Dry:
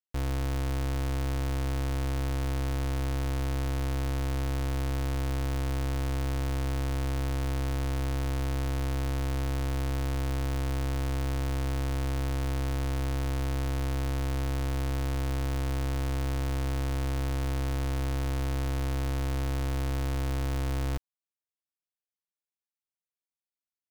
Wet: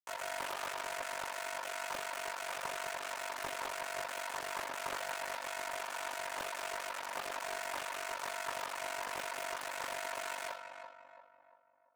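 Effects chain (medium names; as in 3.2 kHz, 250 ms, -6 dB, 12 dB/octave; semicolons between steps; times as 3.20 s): random holes in the spectrogram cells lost 39%; distance through air 160 m; Schmitt trigger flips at -36 dBFS; ladder high-pass 310 Hz, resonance 25%; speed mistake 7.5 ips tape played at 15 ips; peaking EQ 840 Hz +5.5 dB 0.56 oct; filtered feedback delay 342 ms, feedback 49%, low-pass 1.7 kHz, level -6 dB; reverberation RT60 0.65 s, pre-delay 22 ms, DRR -2 dB; ring modulator 24 Hz; loudspeaker Doppler distortion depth 0.39 ms; trim +8.5 dB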